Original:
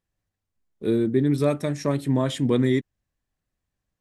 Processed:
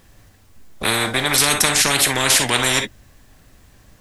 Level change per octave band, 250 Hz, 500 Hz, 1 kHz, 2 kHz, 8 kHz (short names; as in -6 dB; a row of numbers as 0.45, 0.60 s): -5.5, -1.5, +13.5, +20.0, +27.5 dB